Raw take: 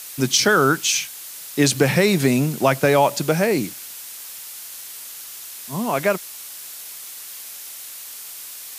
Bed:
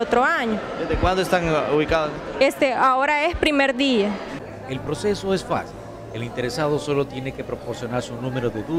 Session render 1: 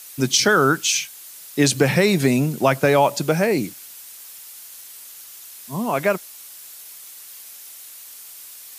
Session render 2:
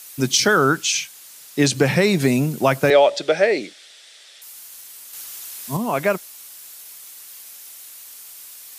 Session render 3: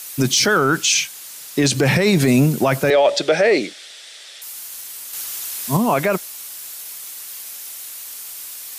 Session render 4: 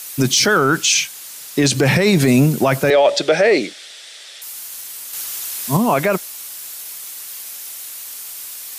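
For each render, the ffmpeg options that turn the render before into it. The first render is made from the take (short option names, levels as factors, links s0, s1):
-af "afftdn=nr=6:nf=-37"
-filter_complex "[0:a]asettb=1/sr,asplit=3[s0][s1][s2];[s0]atrim=end=0.574[s3];[s1]atrim=start=0.57:end=2.21,asetpts=PTS-STARTPTS,afade=t=in:d=0.004:c=qsin,afade=t=out:st=1.636:d=0.004:c=qsin,acrossover=split=8700[s4][s5];[s5]acompressor=threshold=0.00794:ratio=4:attack=1:release=60[s6];[s4][s6]amix=inputs=2:normalize=0[s7];[s2]atrim=start=2.206[s8];[s3][s7]acrossfade=d=0.004:c1=hsin:c2=qsin[s9];[s9][s8]acrossfade=d=0.004:c1=qsin:c2=hsin,asettb=1/sr,asplit=3[s10][s11][s12];[s10]atrim=end=2.904[s13];[s11]atrim=start=2.9:end=4.42,asetpts=PTS-STARTPTS,afade=t=in:d=0.004:c=qsin,afade=t=out:st=1.516:d=0.004:c=qsin,highpass=400,equalizer=f=410:t=q:w=4:g=4,equalizer=f=590:t=q:w=4:g=7,equalizer=f=1000:t=q:w=4:g=-9,equalizer=f=1900:t=q:w=4:g=6,equalizer=f=3500:t=q:w=4:g=9,equalizer=f=6700:t=q:w=4:g=-6,lowpass=f=7200:w=0.5412,lowpass=f=7200:w=1.3066[s14];[s12]atrim=start=4.416[s15];[s13][s14]acrossfade=d=0.004:c1=hsin:c2=qsin[s16];[s16][s15]acrossfade=d=0.004:c1=qsin:c2=hsin,asettb=1/sr,asplit=3[s17][s18][s19];[s17]atrim=end=5.134[s20];[s18]atrim=start=5.13:end=5.77,asetpts=PTS-STARTPTS,afade=t=in:d=0.004:c=qsin,afade=t=out:st=0.636:d=0.004:c=qsin,acontrast=34[s21];[s19]atrim=start=5.766[s22];[s20][s21]acrossfade=d=0.004:c1=hsin:c2=qsin[s23];[s23][s22]acrossfade=d=0.004:c1=qsin:c2=hsin"
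-af "alimiter=limit=0.224:level=0:latency=1:release=20,acontrast=70"
-af "volume=1.19"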